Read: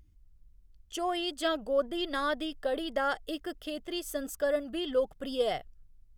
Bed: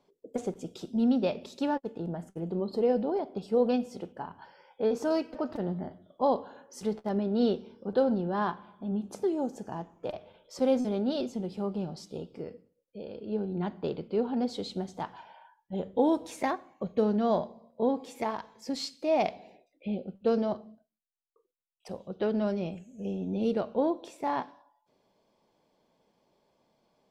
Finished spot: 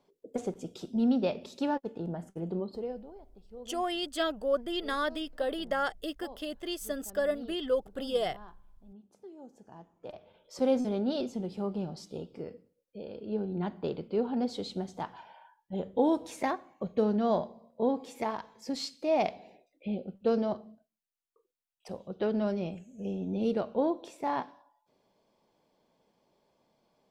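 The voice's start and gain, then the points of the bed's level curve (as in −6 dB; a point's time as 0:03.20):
2.75 s, −0.5 dB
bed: 0:02.55 −1 dB
0:03.18 −21.5 dB
0:09.18 −21.5 dB
0:10.59 −1 dB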